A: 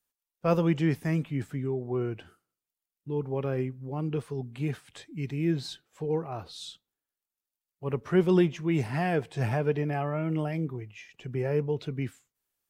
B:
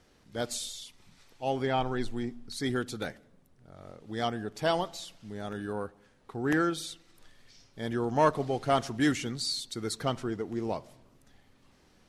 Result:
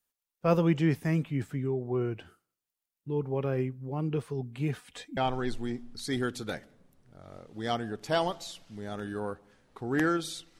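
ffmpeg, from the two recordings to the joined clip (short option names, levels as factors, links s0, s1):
-filter_complex "[0:a]asettb=1/sr,asplit=3[s0][s1][s2];[s0]atrim=end=4.764[s3];[s1]atrim=start=4.76:end=5.17,asetpts=PTS-STARTPTS,afade=t=in:d=0.004:c=qsin,afade=t=out:st=0.406:d=0.004:c=qsin,aecho=1:1:4.1:0.83,atrim=end_sample=18081[s4];[s2]atrim=start=5.166[s5];[s3][s4]acrossfade=d=0.004:c1=hsin:c2=qsin[s6];[s6][s5]acrossfade=d=0.004:c1=qsin:c2=hsin,apad=whole_dur=10.59,atrim=end=10.59,atrim=end=5.172[s7];[1:a]atrim=start=1.698:end=7.12[s8];[s7][s8]acrossfade=d=0.004:c1=hsin:c2=hsin"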